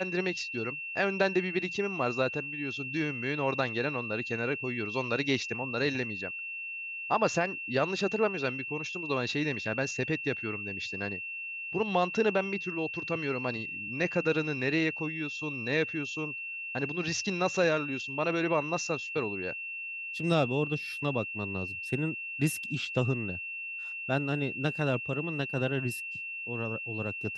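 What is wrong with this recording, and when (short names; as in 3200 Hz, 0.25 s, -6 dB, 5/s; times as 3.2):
tone 2700 Hz -36 dBFS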